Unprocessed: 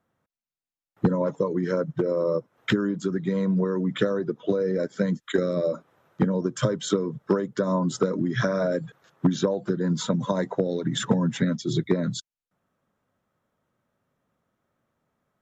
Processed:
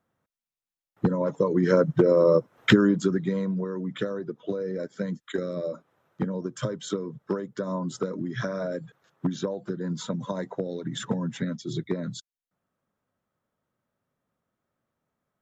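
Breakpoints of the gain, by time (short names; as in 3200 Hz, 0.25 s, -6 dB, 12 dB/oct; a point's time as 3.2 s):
1.18 s -2 dB
1.74 s +5.5 dB
2.93 s +5.5 dB
3.58 s -6 dB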